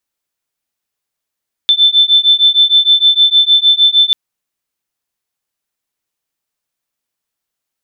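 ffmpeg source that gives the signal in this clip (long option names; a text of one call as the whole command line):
ffmpeg -f lavfi -i "aevalsrc='0.335*(sin(2*PI*3530*t)+sin(2*PI*3536.5*t))':duration=2.44:sample_rate=44100" out.wav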